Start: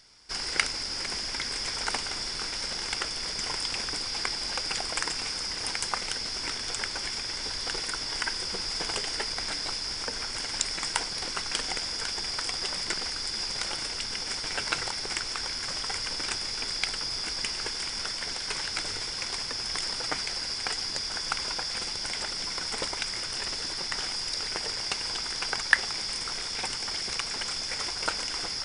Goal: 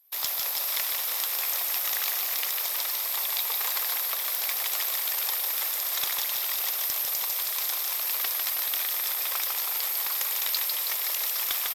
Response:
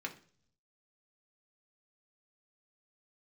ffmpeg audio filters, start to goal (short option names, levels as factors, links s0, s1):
-filter_complex "[0:a]highpass=f=200:w=0.5412,highpass=f=200:w=1.3066,afftdn=nr=17:nf=-52,volume=10.6,asoftclip=hard,volume=0.0944,asetrate=107604,aresample=44100,asplit=2[s0][s1];[s1]aecho=0:1:150|322.5|520.9|749|1011:0.631|0.398|0.251|0.158|0.1[s2];[s0][s2]amix=inputs=2:normalize=0,volume=1.26"